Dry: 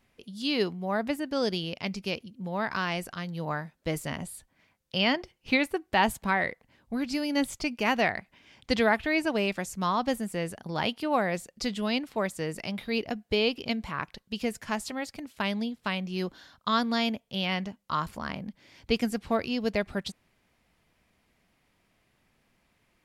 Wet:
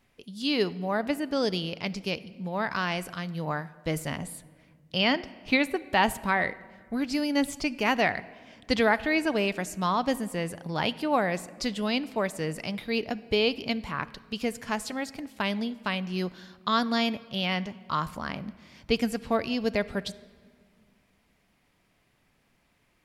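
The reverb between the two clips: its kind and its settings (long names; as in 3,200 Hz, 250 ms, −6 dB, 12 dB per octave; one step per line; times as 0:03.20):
rectangular room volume 2,500 cubic metres, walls mixed, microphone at 0.32 metres
level +1 dB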